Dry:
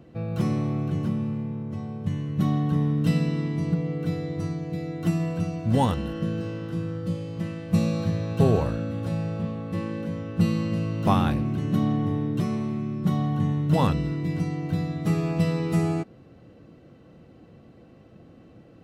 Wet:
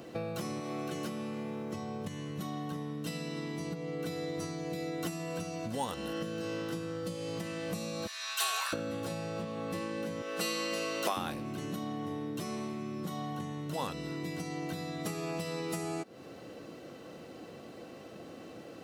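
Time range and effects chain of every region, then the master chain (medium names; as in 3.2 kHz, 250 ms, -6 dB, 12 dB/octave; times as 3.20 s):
0.60–1.73 s: high-pass 320 Hz 6 dB/octave + band-stop 960 Hz, Q 5.4
8.07–8.73 s: high-pass 1.3 kHz 24 dB/octave + comb 2.8 ms, depth 46%
10.22–11.17 s: high-pass 470 Hz + peaking EQ 880 Hz -6 dB 0.4 oct
whole clip: bass shelf 77 Hz -12 dB; compression 10:1, threshold -37 dBFS; tone controls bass -11 dB, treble +9 dB; trim +8 dB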